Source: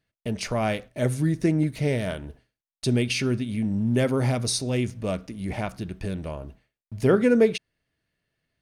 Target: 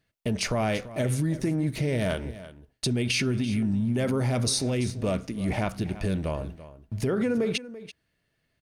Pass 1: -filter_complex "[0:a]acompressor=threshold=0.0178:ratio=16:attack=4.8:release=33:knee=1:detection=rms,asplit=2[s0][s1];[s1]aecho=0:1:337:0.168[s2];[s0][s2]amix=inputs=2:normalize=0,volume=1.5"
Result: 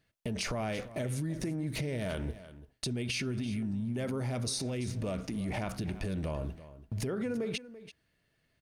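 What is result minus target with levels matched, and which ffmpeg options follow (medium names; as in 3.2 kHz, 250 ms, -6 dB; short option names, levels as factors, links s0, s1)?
compression: peak gain reduction +8.5 dB
-filter_complex "[0:a]acompressor=threshold=0.0501:ratio=16:attack=4.8:release=33:knee=1:detection=rms,asplit=2[s0][s1];[s1]aecho=0:1:337:0.168[s2];[s0][s2]amix=inputs=2:normalize=0,volume=1.5"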